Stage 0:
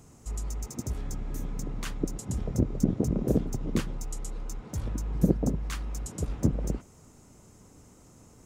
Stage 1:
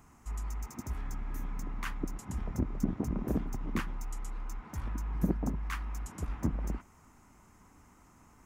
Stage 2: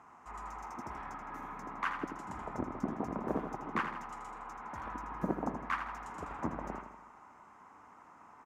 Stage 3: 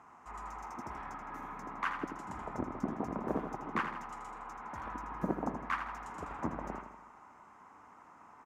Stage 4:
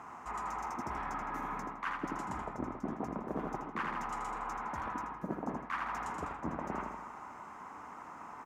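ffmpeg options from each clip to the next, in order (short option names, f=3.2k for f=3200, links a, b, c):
-af "equalizer=f=125:t=o:w=1:g=-8,equalizer=f=500:t=o:w=1:g=-11,equalizer=f=1k:t=o:w=1:g=7,equalizer=f=2k:t=o:w=1:g=5,equalizer=f=4k:t=o:w=1:g=-6,equalizer=f=8k:t=o:w=1:g=-7,volume=-2dB"
-af "bandpass=f=970:t=q:w=1.2:csg=0,aecho=1:1:81|162|243|324|405|486:0.398|0.211|0.112|0.0593|0.0314|0.0166,volume=8.5dB"
-af anull
-af "bandreject=f=50:t=h:w=6,bandreject=f=100:t=h:w=6,areverse,acompressor=threshold=-44dB:ratio=6,areverse,volume=9dB"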